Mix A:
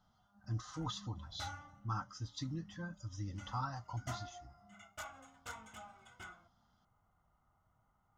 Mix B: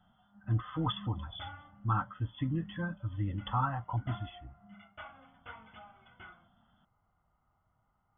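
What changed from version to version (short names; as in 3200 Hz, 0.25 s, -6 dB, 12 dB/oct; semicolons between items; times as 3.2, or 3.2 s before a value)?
speech +8.5 dB; master: add brick-wall FIR low-pass 3500 Hz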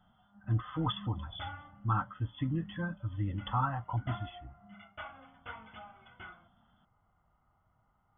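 background +3.0 dB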